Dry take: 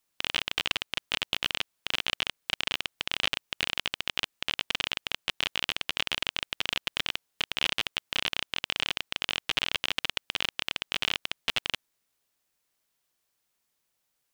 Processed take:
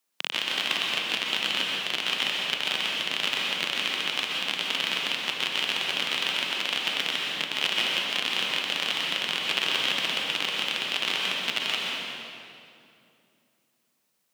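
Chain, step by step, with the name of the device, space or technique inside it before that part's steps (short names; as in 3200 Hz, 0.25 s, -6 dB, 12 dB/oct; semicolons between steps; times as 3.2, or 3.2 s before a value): 6.1–6.75 HPF 180 Hz; HPF 170 Hz 24 dB/oct; stairwell (reverb RT60 2.6 s, pre-delay 0.117 s, DRR -3 dB)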